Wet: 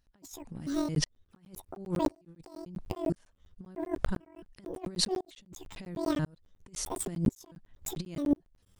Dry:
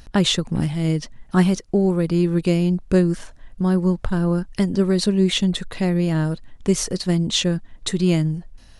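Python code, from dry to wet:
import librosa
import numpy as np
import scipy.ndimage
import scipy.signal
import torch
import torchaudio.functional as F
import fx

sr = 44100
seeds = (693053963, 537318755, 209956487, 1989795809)

y = fx.pitch_trill(x, sr, semitones=11.0, every_ms=221)
y = fx.over_compress(y, sr, threshold_db=-24.0, ratio=-0.5)
y = fx.buffer_crackle(y, sr, first_s=0.95, period_s=0.1, block=512, kind='zero')
y = fx.tremolo_decay(y, sr, direction='swelling', hz=0.96, depth_db=35)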